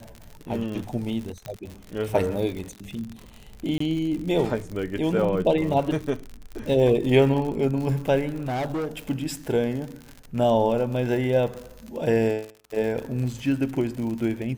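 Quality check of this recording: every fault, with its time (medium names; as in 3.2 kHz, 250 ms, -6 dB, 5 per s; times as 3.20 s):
crackle 73 per s -31 dBFS
1.46 s: pop -20 dBFS
3.78–3.80 s: dropout 24 ms
8.35–8.88 s: clipped -24.5 dBFS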